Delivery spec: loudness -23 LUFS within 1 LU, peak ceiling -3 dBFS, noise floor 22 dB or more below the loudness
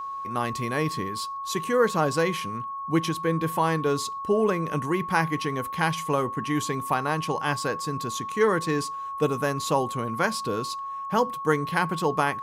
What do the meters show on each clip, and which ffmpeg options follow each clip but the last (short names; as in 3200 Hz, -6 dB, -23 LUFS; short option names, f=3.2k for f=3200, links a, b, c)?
steady tone 1100 Hz; tone level -31 dBFS; loudness -26.5 LUFS; peak -8.0 dBFS; loudness target -23.0 LUFS
-> -af "bandreject=f=1.1k:w=30"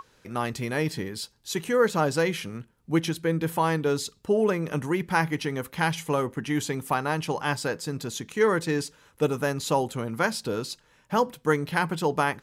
steady tone none; loudness -27.0 LUFS; peak -8.0 dBFS; loudness target -23.0 LUFS
-> -af "volume=4dB"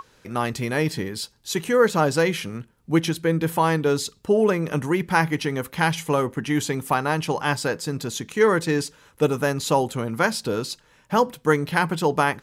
loudness -23.0 LUFS; peak -4.0 dBFS; noise floor -59 dBFS